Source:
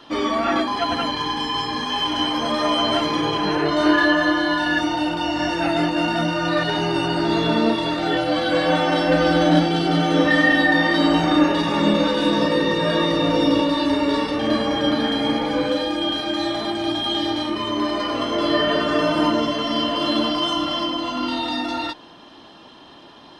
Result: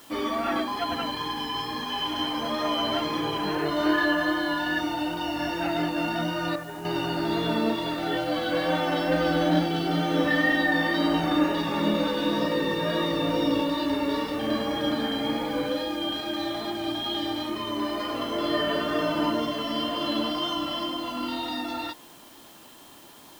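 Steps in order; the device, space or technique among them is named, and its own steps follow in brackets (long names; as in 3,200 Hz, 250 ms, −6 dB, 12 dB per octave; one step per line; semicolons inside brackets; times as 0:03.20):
worn cassette (low-pass filter 6,000 Hz; tape wow and flutter 17 cents; tape dropouts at 0:06.56, 287 ms −8 dB; white noise bed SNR 26 dB)
level −6.5 dB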